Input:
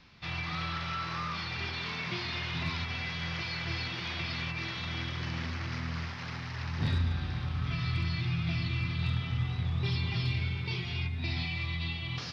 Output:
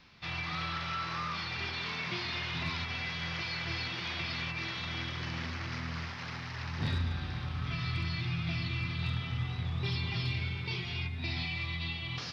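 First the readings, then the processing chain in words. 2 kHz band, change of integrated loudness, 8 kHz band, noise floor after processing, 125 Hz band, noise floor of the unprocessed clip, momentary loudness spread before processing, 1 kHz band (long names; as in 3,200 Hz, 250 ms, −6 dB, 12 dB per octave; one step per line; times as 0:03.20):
0.0 dB, −1.5 dB, can't be measured, −41 dBFS, −3.0 dB, −39 dBFS, 5 LU, 0.0 dB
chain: low-shelf EQ 230 Hz −4 dB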